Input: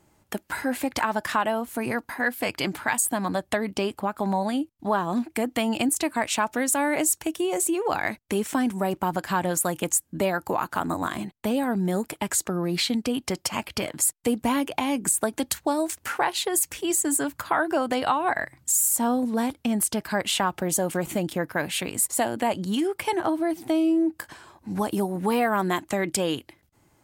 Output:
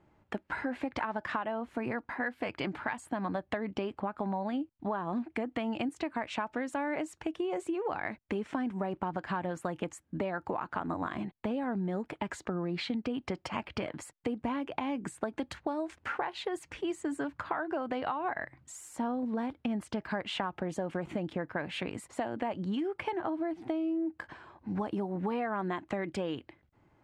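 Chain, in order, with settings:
low-pass filter 2,400 Hz 12 dB per octave
downward compressor, threshold −27 dBFS, peak gain reduction 9 dB
level −3 dB

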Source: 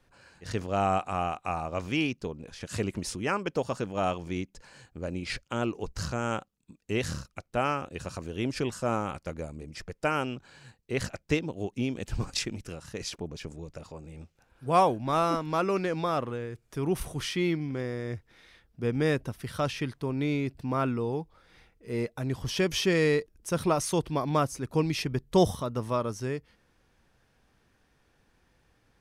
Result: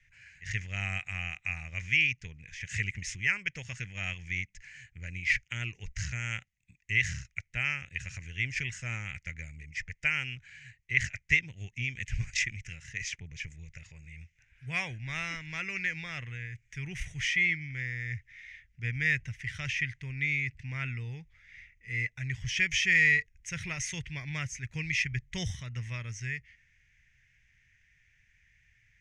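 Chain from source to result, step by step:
drawn EQ curve 120 Hz 0 dB, 280 Hz −23 dB, 650 Hz −24 dB, 1,200 Hz −21 dB, 2,000 Hz +15 dB, 4,300 Hz −10 dB, 6,500 Hz +3 dB, 11,000 Hz −23 dB

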